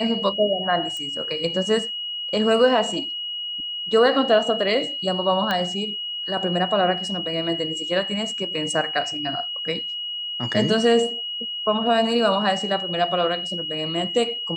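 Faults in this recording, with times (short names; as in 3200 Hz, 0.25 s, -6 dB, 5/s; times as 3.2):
tone 2900 Hz -27 dBFS
0.97 pop -20 dBFS
5.51 pop -10 dBFS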